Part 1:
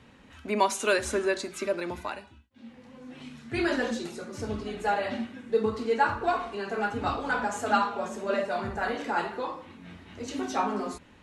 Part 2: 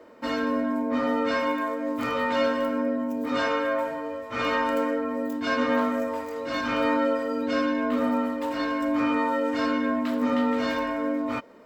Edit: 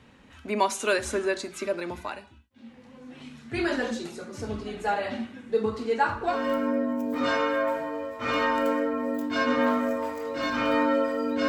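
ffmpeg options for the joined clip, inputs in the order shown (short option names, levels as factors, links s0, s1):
-filter_complex "[0:a]apad=whole_dur=11.48,atrim=end=11.48,atrim=end=6.47,asetpts=PTS-STARTPTS[s0];[1:a]atrim=start=2.38:end=7.59,asetpts=PTS-STARTPTS[s1];[s0][s1]acrossfade=d=0.2:c1=tri:c2=tri"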